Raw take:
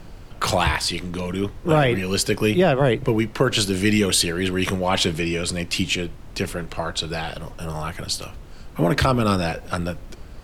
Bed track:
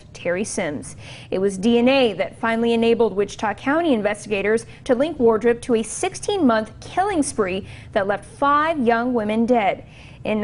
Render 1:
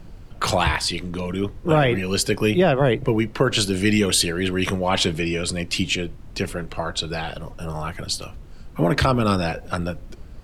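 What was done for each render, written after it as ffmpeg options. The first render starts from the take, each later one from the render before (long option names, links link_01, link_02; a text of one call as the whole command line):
ffmpeg -i in.wav -af "afftdn=noise_reduction=6:noise_floor=-40" out.wav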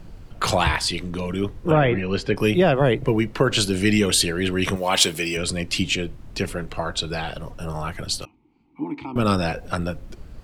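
ffmpeg -i in.wav -filter_complex "[0:a]asplit=3[link_01][link_02][link_03];[link_01]afade=type=out:start_time=1.7:duration=0.02[link_04];[link_02]lowpass=2700,afade=type=in:start_time=1.7:duration=0.02,afade=type=out:start_time=2.35:duration=0.02[link_05];[link_03]afade=type=in:start_time=2.35:duration=0.02[link_06];[link_04][link_05][link_06]amix=inputs=3:normalize=0,asettb=1/sr,asplit=3[link_07][link_08][link_09];[link_07]atrim=end=4.764[link_10];[link_08]atrim=start=4.76:end=5.37,asetpts=PTS-STARTPTS,afade=type=in:duration=0.004:curve=qsin,afade=type=out:start_time=0.606:duration=0.004:curve=qsin,aemphasis=mode=production:type=bsi[link_11];[link_09]atrim=start=5.366[link_12];[link_10][link_11]acrossfade=duration=0.004:curve1=hsin:curve2=qsin[link_13];[link_13][link_12]acrossfade=duration=0.004:curve1=qsin:curve2=hsin,asettb=1/sr,asplit=3[link_14][link_15][link_16];[link_14]atrim=end=8.254[link_17];[link_15]atrim=start=8.25:end=9.16,asetpts=PTS-STARTPTS,afade=type=in:duration=0.004:curve=qsin,afade=type=out:start_time=0.906:duration=0.004:curve=qsin,asplit=3[link_18][link_19][link_20];[link_18]bandpass=frequency=300:width_type=q:width=8,volume=0dB[link_21];[link_19]bandpass=frequency=870:width_type=q:width=8,volume=-6dB[link_22];[link_20]bandpass=frequency=2240:width_type=q:width=8,volume=-9dB[link_23];[link_21][link_22][link_23]amix=inputs=3:normalize=0[link_24];[link_16]atrim=start=9.156[link_25];[link_17][link_24]acrossfade=duration=0.004:curve1=hsin:curve2=qsin[link_26];[link_26][link_25]acrossfade=duration=0.004:curve1=qsin:curve2=hsin" out.wav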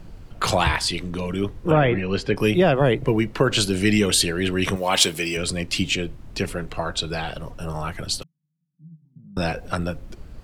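ffmpeg -i in.wav -filter_complex "[0:a]asettb=1/sr,asplit=3[link_01][link_02][link_03];[link_01]atrim=end=5.084[link_04];[link_02]atrim=start=5.08:end=5.94,asetpts=PTS-STARTPTS,afade=type=in:duration=0.004:curve=qsin,afade=type=out:start_time=0.856:duration=0.004:curve=qsin,aeval=exprs='sgn(val(0))*max(abs(val(0))-0.00211,0)':channel_layout=same[link_05];[link_03]atrim=start=5.936[link_06];[link_04][link_05]acrossfade=duration=0.004:curve1=hsin:curve2=qsin[link_07];[link_07][link_06]acrossfade=duration=0.004:curve1=qsin:curve2=hsin,asettb=1/sr,asplit=3[link_08][link_09][link_10];[link_08]atrim=end=8.234[link_11];[link_09]atrim=start=8.23:end=9.37,asetpts=PTS-STARTPTS,afade=type=in:duration=0.004:curve=qsin,afade=type=out:start_time=1.136:duration=0.004:curve=qsin,asuperpass=centerf=160:order=4:qfactor=7.1[link_12];[link_10]atrim=start=9.366[link_13];[link_11][link_12]acrossfade=duration=0.004:curve1=hsin:curve2=qsin[link_14];[link_14][link_13]acrossfade=duration=0.004:curve1=qsin:curve2=hsin" out.wav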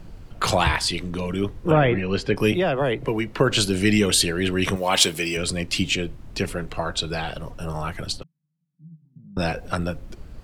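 ffmpeg -i in.wav -filter_complex "[0:a]asettb=1/sr,asplit=3[link_01][link_02][link_03];[link_01]atrim=end=2.524[link_04];[link_02]atrim=start=2.52:end=3.39,asetpts=PTS-STARTPTS,afade=type=in:duration=0.004:curve=qsin,afade=type=out:start_time=0.866:duration=0.004:curve=qsin,acrossover=split=85|210|550|4300[link_05][link_06][link_07][link_08][link_09];[link_05]acompressor=threshold=-39dB:ratio=3[link_10];[link_06]acompressor=threshold=-35dB:ratio=3[link_11];[link_07]acompressor=threshold=-26dB:ratio=3[link_12];[link_08]acompressor=threshold=-23dB:ratio=3[link_13];[link_09]acompressor=threshold=-50dB:ratio=3[link_14];[link_10][link_11][link_12][link_13][link_14]amix=inputs=5:normalize=0[link_15];[link_03]atrim=start=3.386[link_16];[link_04][link_15]acrossfade=duration=0.004:curve1=hsin:curve2=qsin[link_17];[link_17][link_16]acrossfade=duration=0.004:curve1=qsin:curve2=hsin,asplit=3[link_18][link_19][link_20];[link_18]afade=type=out:start_time=8.11:duration=0.02[link_21];[link_19]lowpass=frequency=1500:poles=1,afade=type=in:start_time=8.11:duration=0.02,afade=type=out:start_time=9.38:duration=0.02[link_22];[link_20]afade=type=in:start_time=9.38:duration=0.02[link_23];[link_21][link_22][link_23]amix=inputs=3:normalize=0" out.wav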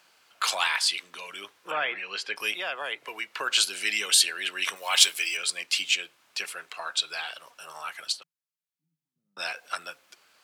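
ffmpeg -i in.wav -af "highpass=1400,bandreject=frequency=1900:width=18" out.wav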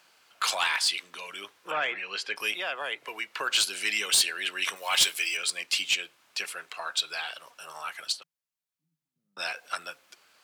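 ffmpeg -i in.wav -af "asoftclip=type=tanh:threshold=-14.5dB" out.wav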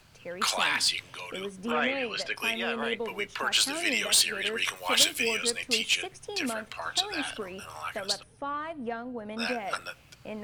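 ffmpeg -i in.wav -i bed.wav -filter_complex "[1:a]volume=-17dB[link_01];[0:a][link_01]amix=inputs=2:normalize=0" out.wav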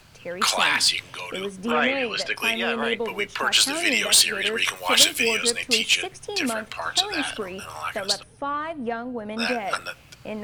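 ffmpeg -i in.wav -af "volume=6dB" out.wav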